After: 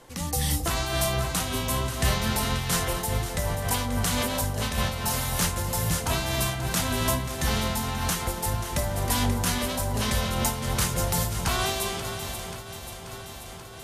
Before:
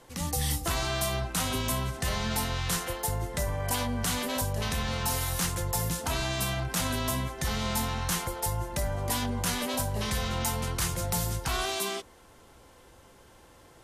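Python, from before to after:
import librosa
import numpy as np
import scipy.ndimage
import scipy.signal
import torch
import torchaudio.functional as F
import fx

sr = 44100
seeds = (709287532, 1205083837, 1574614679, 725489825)

p1 = x + fx.echo_alternate(x, sr, ms=267, hz=880.0, feedback_pct=83, wet_db=-8, dry=0)
p2 = fx.am_noise(p1, sr, seeds[0], hz=5.7, depth_pct=60)
y = p2 * 10.0 ** (5.5 / 20.0)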